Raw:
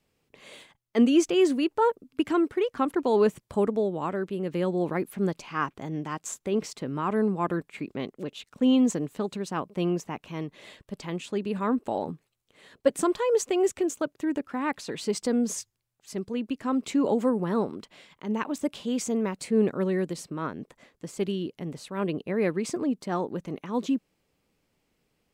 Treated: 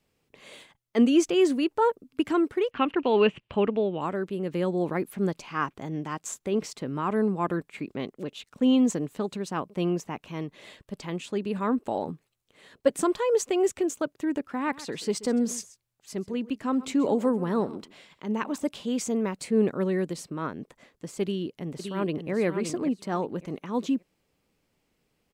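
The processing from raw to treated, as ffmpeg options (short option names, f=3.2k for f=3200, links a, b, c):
-filter_complex "[0:a]asettb=1/sr,asplit=3[a][b][c];[a]atrim=end=2.714[d];[b]atrim=start=2.71:end=4.01,asetpts=PTS-STARTPTS,afade=t=in:d=0.004:c=qsin,afade=t=out:st=1.296:d=0.004:c=qsin,lowpass=f=2.8k:t=q:w=7.3[e];[c]atrim=start=4.006[f];[d][e]acrossfade=d=0.004:c1=hsin:c2=qsin[g];[g][f]acrossfade=d=0.004:c1=qsin:c2=hsin,asettb=1/sr,asplit=3[h][i][j];[h]atrim=end=14.444[k];[i]atrim=start=14.44:end=18.69,asetpts=PTS-STARTPTS,afade=t=in:d=0.004:c=qsin,afade=t=out:st=4.246:d=0.004:c=qsin,aecho=1:1:131:0.126,atrim=end_sample=187425[l];[j]atrim=start=18.686[m];[k][l]acrossfade=d=0.004:c1=hsin:c2=qsin[n];[n][m]acrossfade=d=0.004:c1=qsin:c2=hsin,asplit=2[o][p];[p]afade=t=in:st=21.22:d=0.01,afade=t=out:st=22.31:d=0.01,aecho=0:1:570|1140|1710:0.473151|0.118288|0.029572[q];[o][q]amix=inputs=2:normalize=0"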